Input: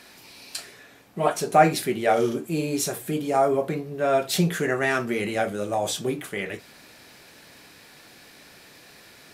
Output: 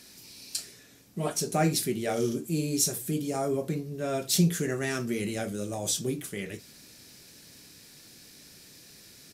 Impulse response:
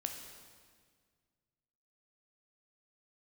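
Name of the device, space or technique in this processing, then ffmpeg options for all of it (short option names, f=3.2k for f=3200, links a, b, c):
behind a face mask: -af "firequalizer=gain_entry='entry(160,0);entry(740,-13);entry(5500,9)':delay=0.05:min_phase=1,highshelf=f=3.3k:g=-7.5"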